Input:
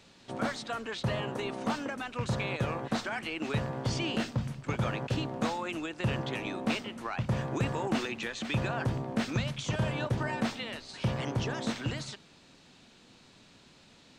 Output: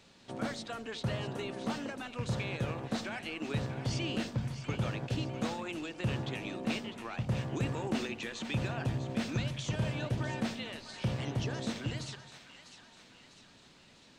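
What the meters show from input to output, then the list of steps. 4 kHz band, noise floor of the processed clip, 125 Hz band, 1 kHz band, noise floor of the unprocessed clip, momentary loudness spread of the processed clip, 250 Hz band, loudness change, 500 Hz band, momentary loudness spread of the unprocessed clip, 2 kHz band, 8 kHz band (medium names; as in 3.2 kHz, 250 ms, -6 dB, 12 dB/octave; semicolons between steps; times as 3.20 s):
-3.0 dB, -59 dBFS, -1.5 dB, -6.0 dB, -58 dBFS, 8 LU, -2.5 dB, -3.0 dB, -4.0 dB, 4 LU, -4.5 dB, -2.0 dB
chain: dynamic bell 1.1 kHz, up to -5 dB, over -45 dBFS, Q 0.87; two-band feedback delay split 790 Hz, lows 82 ms, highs 650 ms, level -11 dB; trim -2.5 dB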